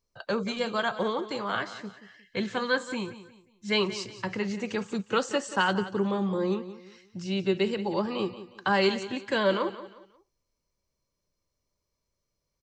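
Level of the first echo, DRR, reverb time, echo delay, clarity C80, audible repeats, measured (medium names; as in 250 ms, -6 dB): -14.0 dB, no reverb, no reverb, 179 ms, no reverb, 3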